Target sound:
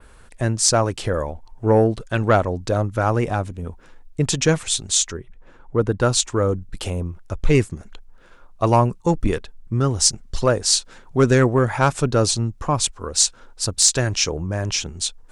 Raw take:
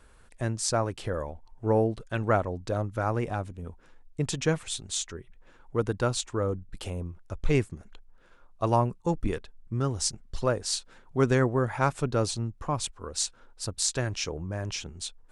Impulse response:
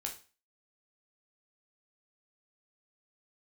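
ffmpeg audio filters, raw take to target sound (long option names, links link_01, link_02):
-filter_complex "[0:a]asettb=1/sr,asplit=3[link_01][link_02][link_03];[link_01]atrim=end=5.174[link_04];[link_02]atrim=start=5.17:end=6.01,asetpts=PTS-STARTPTS,afade=type=in:duration=0.004:curve=qsin,afade=type=out:start_time=0.836:duration=0.004:curve=qsin,highshelf=frequency=2400:gain=-10[link_05];[link_03]atrim=start=6.006[link_06];[link_04][link_05]acrossfade=duration=0.004:curve1=hsin:curve2=qsin[link_07];[link_07][link_06]acrossfade=duration=0.004:curve1=qsin:curve2=hsin,aeval=exprs='0.398*sin(PI/2*1.41*val(0)/0.398)':channel_layout=same,adynamicequalizer=threshold=0.0126:dfrequency=6400:dqfactor=0.91:tfrequency=6400:tqfactor=0.91:attack=5:release=100:ratio=0.375:range=2.5:mode=boostabove:tftype=bell,volume=2dB"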